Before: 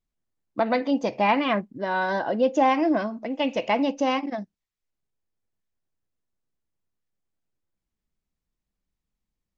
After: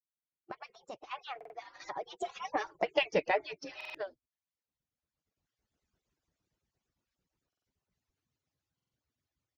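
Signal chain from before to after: harmonic-percussive separation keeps percussive; recorder AGC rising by 16 dB/s; Doppler pass-by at 2.92 s, 47 m/s, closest 13 m; resampled via 16 kHz; buffer glitch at 1.36/3.76/7.48/8.75 s, samples 2048, times 3

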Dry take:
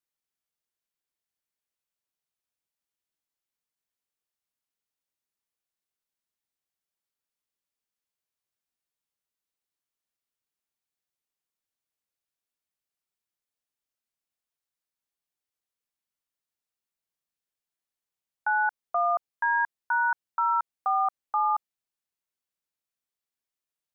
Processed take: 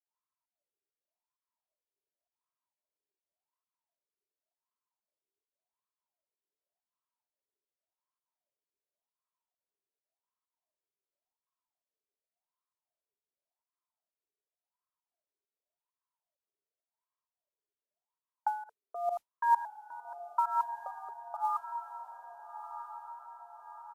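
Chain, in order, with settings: comb 3.1 ms, depth 51%; in parallel at -1 dB: compressor with a negative ratio -32 dBFS, ratio -1; on the sum: wah-wah 0.89 Hz 410–1100 Hz, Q 11; modulation noise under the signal 33 dB; volume shaper 132 bpm, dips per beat 1, -20 dB, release 173 ms; on a send: echo that smears into a reverb 1296 ms, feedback 58%, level -10.5 dB; on the sum: resampled via 32 kHz; trim +2 dB

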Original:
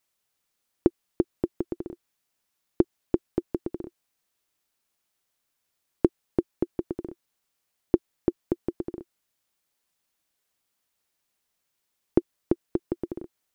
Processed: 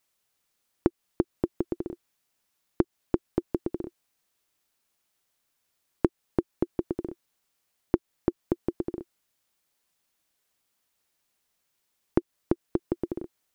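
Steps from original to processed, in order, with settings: compression 2:1, threshold -24 dBFS, peak gain reduction 6 dB; trim +2 dB

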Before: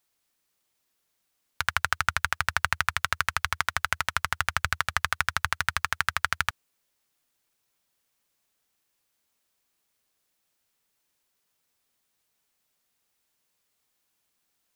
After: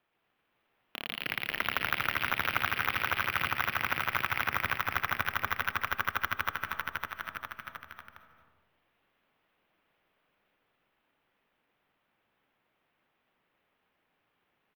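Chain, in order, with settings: square wave that keeps the level; high-pass 130 Hz 12 dB/octave; treble shelf 4.4 kHz -10.5 dB; ever faster or slower copies 128 ms, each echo +6 st, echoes 3; sample-and-hold 6×; high-order bell 6.7 kHz -14.5 dB; on a send at -13.5 dB: reverberation RT60 1.1 s, pre-delay 184 ms; on the sum: compression 1.5:1, threshold -41 dBFS, peak gain reduction 9 dB; bouncing-ball echo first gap 550 ms, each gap 0.75×, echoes 5

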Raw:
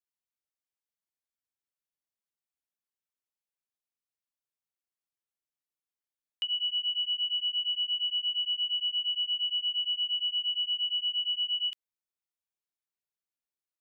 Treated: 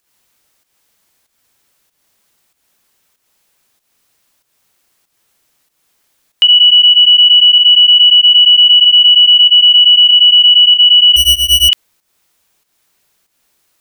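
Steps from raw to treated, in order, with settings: 11.16–11.69 s: median filter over 25 samples; volume shaper 95 bpm, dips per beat 1, -10 dB, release 242 ms; loudness maximiser +34.5 dB; trim -1 dB

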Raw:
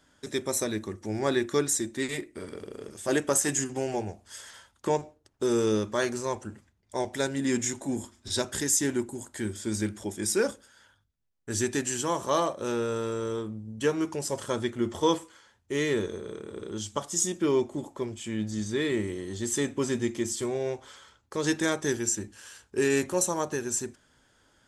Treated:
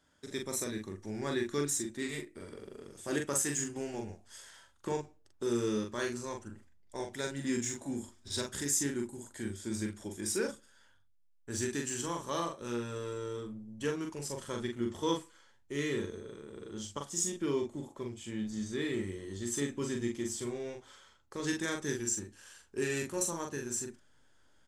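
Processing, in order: dynamic bell 670 Hz, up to -7 dB, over -42 dBFS, Q 1.4; in parallel at -11 dB: hysteresis with a dead band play -26 dBFS; on the sum: doubling 42 ms -4 dB; trim -8.5 dB

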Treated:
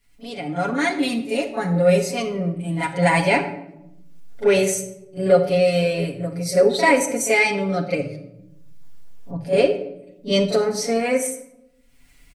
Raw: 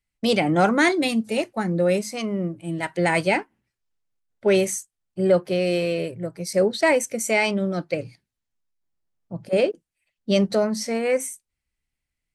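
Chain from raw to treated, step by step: fade-in on the opening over 1.86 s; upward compressor, threshold -36 dBFS; comb 7.1 ms, depth 83%; pre-echo 39 ms -13 dB; simulated room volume 2600 m³, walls furnished, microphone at 1.8 m

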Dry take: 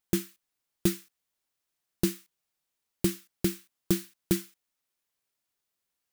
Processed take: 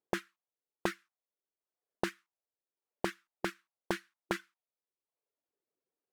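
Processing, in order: reverb removal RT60 0.85 s; auto-wah 400–1500 Hz, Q 2.4, up, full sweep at -29 dBFS; trim +9.5 dB

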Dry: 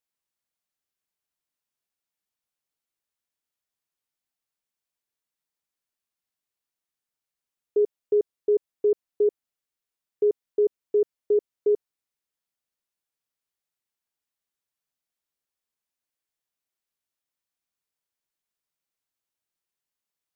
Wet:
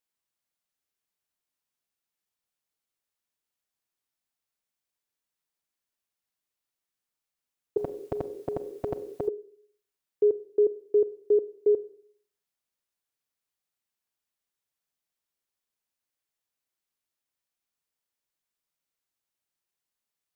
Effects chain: Schroeder reverb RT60 0.6 s, combs from 31 ms, DRR 15 dB; 7.77–9.28 s: spectrum-flattening compressor 4:1

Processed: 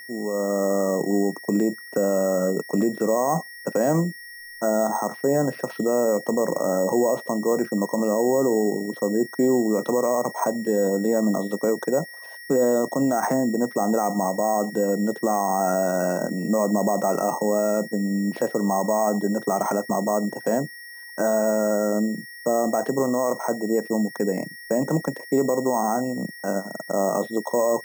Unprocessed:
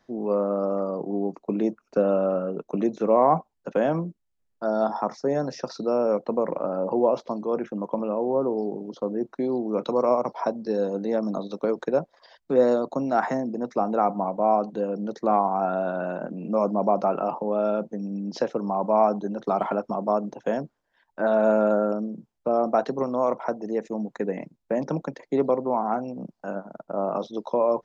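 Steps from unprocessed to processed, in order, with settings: peaking EQ 5.1 kHz -14.5 dB 2.1 oct; peak limiter -19.5 dBFS, peak gain reduction 11 dB; level rider gain up to 7 dB; whistle 1.9 kHz -38 dBFS; sample-and-hold 6×

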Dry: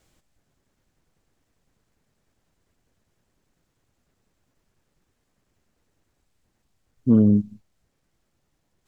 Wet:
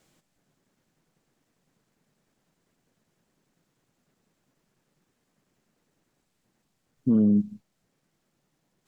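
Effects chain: resonant low shelf 110 Hz -10.5 dB, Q 1.5; peak limiter -14.5 dBFS, peak gain reduction 7.5 dB

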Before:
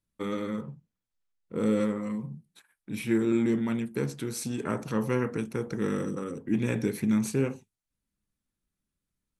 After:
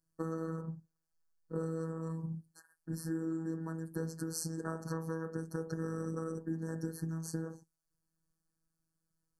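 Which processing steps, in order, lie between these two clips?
compression, threshold -35 dBFS, peak gain reduction 13.5 dB; robot voice 162 Hz; brick-wall FIR band-stop 1.8–4.2 kHz; trim +3 dB

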